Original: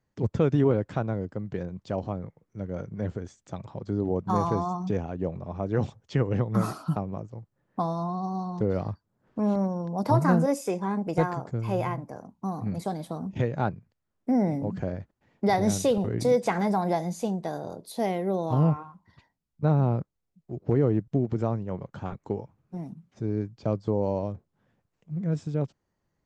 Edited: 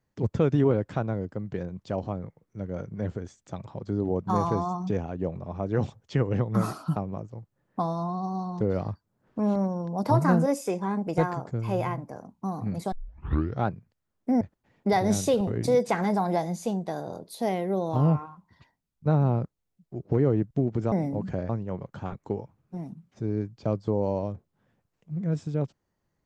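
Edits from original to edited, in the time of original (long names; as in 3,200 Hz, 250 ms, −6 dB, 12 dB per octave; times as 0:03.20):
0:12.92: tape start 0.74 s
0:14.41–0:14.98: move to 0:21.49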